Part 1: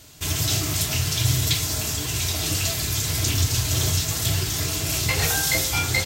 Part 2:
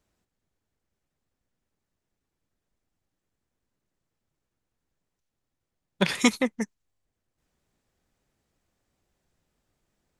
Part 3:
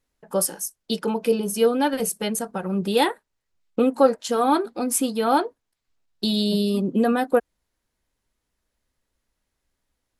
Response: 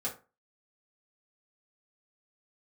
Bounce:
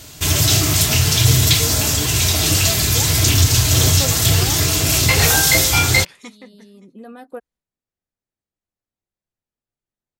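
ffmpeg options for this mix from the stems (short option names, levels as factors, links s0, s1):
-filter_complex "[0:a]volume=1.26[s0];[1:a]flanger=delay=7.8:depth=4.2:regen=-59:speed=0.2:shape=triangular,volume=0.112,asplit=3[s1][s2][s3];[s2]volume=0.0668[s4];[2:a]agate=range=0.0224:threshold=0.00891:ratio=3:detection=peak,volume=0.119[s5];[s3]apad=whole_len=449730[s6];[s5][s6]sidechaincompress=threshold=0.00178:ratio=6:attack=7.8:release=1020[s7];[s4]aecho=0:1:569:1[s8];[s0][s1][s7][s8]amix=inputs=4:normalize=0,acontrast=73"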